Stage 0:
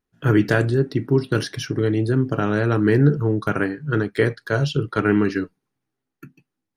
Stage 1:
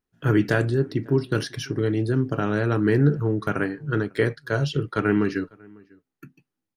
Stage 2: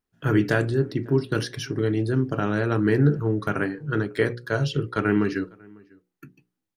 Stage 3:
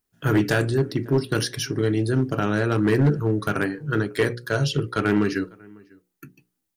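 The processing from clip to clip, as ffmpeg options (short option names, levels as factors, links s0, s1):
-filter_complex "[0:a]asplit=2[s0][s1];[s1]adelay=548.1,volume=0.0501,highshelf=f=4000:g=-12.3[s2];[s0][s2]amix=inputs=2:normalize=0,volume=0.708"
-af "bandreject=f=60:t=h:w=6,bandreject=f=120:t=h:w=6,bandreject=f=180:t=h:w=6,bandreject=f=240:t=h:w=6,bandreject=f=300:t=h:w=6,bandreject=f=360:t=h:w=6,bandreject=f=420:t=h:w=6,bandreject=f=480:t=h:w=6,bandreject=f=540:t=h:w=6"
-af "highshelf=f=5500:g=11,volume=5.31,asoftclip=hard,volume=0.188,volume=1.19"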